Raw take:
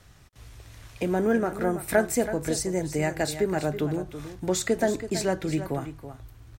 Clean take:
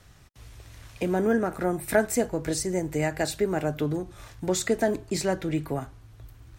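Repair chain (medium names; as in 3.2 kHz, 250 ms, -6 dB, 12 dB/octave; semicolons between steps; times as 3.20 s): inverse comb 328 ms -11.5 dB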